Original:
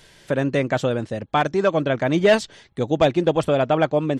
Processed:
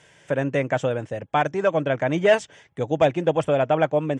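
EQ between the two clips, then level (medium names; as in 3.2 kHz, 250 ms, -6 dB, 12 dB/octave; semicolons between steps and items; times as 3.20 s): cabinet simulation 110–8300 Hz, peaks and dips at 220 Hz -10 dB, 360 Hz -6 dB, 1.2 kHz -4 dB, 4.1 kHz -10 dB; peaking EQ 4.6 kHz -7.5 dB 0.65 oct; 0.0 dB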